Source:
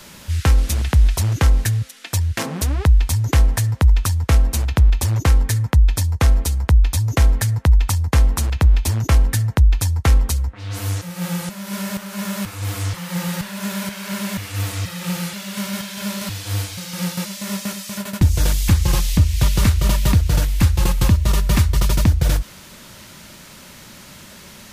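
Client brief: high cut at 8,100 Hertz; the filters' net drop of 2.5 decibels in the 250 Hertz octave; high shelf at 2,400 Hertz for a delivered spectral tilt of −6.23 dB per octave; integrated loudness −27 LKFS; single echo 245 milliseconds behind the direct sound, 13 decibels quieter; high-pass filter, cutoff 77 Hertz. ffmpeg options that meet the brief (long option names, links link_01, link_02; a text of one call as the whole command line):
ffmpeg -i in.wav -af "highpass=77,lowpass=8100,equalizer=frequency=250:width_type=o:gain=-3.5,highshelf=frequency=2400:gain=-9,aecho=1:1:245:0.224,volume=-3.5dB" out.wav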